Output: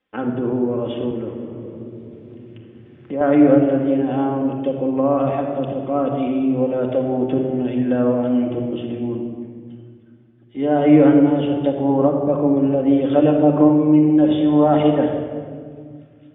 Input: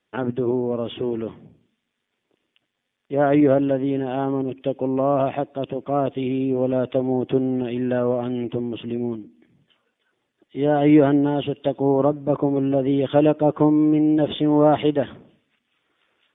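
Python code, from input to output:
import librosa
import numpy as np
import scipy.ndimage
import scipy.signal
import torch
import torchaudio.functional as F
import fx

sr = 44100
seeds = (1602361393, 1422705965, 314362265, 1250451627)

y = scipy.signal.sosfilt(scipy.signal.butter(2, 3100.0, 'lowpass', fs=sr, output='sos'), x)
y = fx.room_shoebox(y, sr, seeds[0], volume_m3=3500.0, walls='mixed', distance_m=2.1)
y = fx.band_squash(y, sr, depth_pct=70, at=(1.11, 3.21))
y = y * librosa.db_to_amplitude(-1.0)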